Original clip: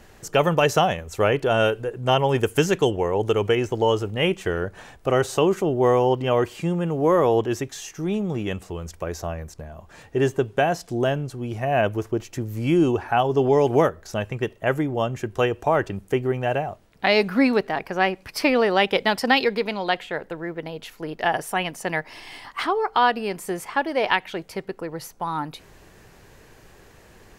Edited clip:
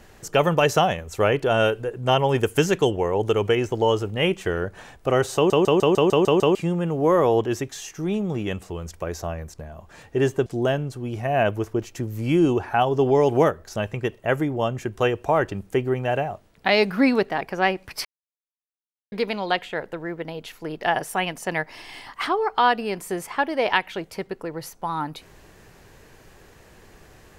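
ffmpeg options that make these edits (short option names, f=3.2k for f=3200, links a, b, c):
-filter_complex "[0:a]asplit=12[a][b][c][d][e][f][g][h][i][j][k][l];[a]atrim=end=5.502[m];[b]atrim=start=5.348:end=5.502[n];[c]atrim=start=5.348:end=5.502[o];[d]atrim=start=5.348:end=5.502[p];[e]atrim=start=5.348:end=5.502[q];[f]atrim=start=5.348:end=5.502[r];[g]atrim=start=5.348:end=5.502[s];[h]atrim=start=5.348:end=5.502[t];[i]atrim=start=6.548:end=10.462[u];[j]atrim=start=10.838:end=18.43,asetpts=PTS-STARTPTS,afade=t=out:st=7.588:d=0.004:c=hsin[v];[k]atrim=start=18.43:end=19.5,asetpts=PTS-STARTPTS,volume=0[w];[l]atrim=start=19.5,asetpts=PTS-STARTPTS,afade=t=in:d=0.004:c=hsin[x];[m][n]acrossfade=d=0.004:c1=hsin:c2=hsin[y];[y][o]acrossfade=d=0.004:c1=hsin:c2=hsin[z];[z][p]acrossfade=d=0.004:c1=hsin:c2=hsin[aa];[aa][q]acrossfade=d=0.004:c1=hsin:c2=hsin[ab];[ab][r]acrossfade=d=0.004:c1=hsin:c2=hsin[ac];[ac][s]acrossfade=d=0.004:c1=hsin:c2=hsin[ad];[ad][t]acrossfade=d=0.004:c1=hsin:c2=hsin[ae];[ae][u]acrossfade=d=0.004:c1=hsin:c2=hsin[af];[v][w][x]concat=n=3:v=0:a=1[ag];[af][ag]acrossfade=d=0.004:c1=hsin:c2=hsin"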